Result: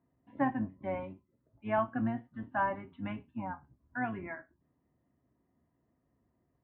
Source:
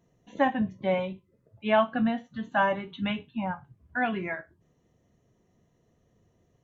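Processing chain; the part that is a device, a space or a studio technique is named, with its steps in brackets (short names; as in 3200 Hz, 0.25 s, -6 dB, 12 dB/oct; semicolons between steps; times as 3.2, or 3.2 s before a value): sub-octave bass pedal (octaver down 1 oct, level -3 dB; speaker cabinet 70–2100 Hz, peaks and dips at 97 Hz -6 dB, 180 Hz -5 dB, 270 Hz +7 dB, 460 Hz -8 dB, 1000 Hz +4 dB); gain -8 dB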